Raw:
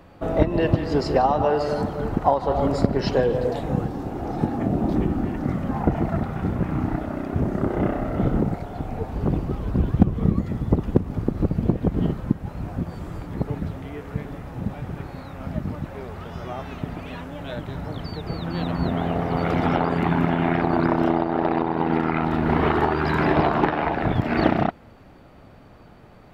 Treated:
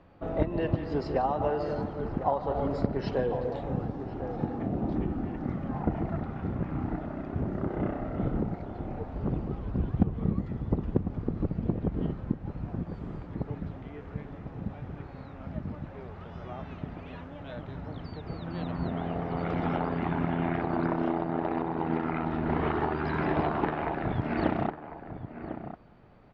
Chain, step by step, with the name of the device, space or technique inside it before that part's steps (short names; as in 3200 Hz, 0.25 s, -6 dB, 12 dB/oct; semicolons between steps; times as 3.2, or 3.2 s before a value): shout across a valley (air absorption 160 m; outdoor echo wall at 180 m, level -10 dB); gain -8 dB